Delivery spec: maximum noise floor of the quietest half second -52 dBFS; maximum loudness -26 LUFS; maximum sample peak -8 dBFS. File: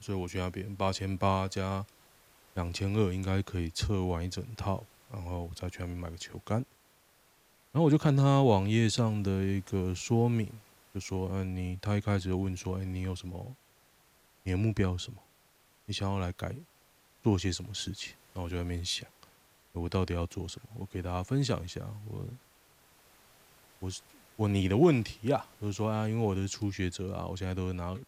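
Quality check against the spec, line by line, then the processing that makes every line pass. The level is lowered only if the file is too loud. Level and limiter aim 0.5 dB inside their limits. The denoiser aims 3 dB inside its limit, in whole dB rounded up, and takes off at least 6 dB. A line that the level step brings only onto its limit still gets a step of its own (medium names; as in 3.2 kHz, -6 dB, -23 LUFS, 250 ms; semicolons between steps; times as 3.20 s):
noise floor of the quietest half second -65 dBFS: pass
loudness -32.0 LUFS: pass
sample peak -13.0 dBFS: pass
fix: none needed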